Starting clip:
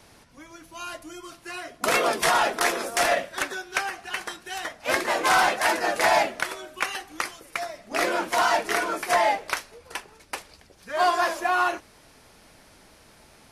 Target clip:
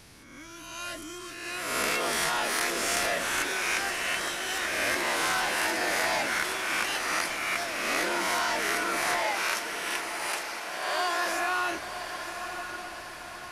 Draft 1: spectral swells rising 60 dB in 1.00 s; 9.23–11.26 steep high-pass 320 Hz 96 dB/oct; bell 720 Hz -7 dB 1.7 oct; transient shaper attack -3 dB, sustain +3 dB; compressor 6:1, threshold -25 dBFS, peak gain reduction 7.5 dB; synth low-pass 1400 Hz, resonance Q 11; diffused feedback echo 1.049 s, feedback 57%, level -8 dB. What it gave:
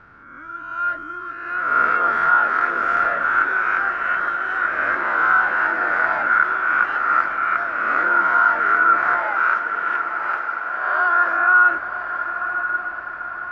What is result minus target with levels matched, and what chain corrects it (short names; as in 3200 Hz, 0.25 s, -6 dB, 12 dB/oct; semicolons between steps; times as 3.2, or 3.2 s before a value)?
1000 Hz band +3.5 dB
spectral swells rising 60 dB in 1.00 s; 9.23–11.26 steep high-pass 320 Hz 96 dB/oct; bell 720 Hz -7 dB 1.7 oct; transient shaper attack -3 dB, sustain +3 dB; compressor 6:1, threshold -25 dBFS, peak gain reduction 7.5 dB; diffused feedback echo 1.049 s, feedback 57%, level -8 dB